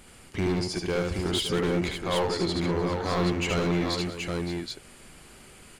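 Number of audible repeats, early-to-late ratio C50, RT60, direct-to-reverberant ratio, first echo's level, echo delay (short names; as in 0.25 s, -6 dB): 5, none, none, none, -3.5 dB, 74 ms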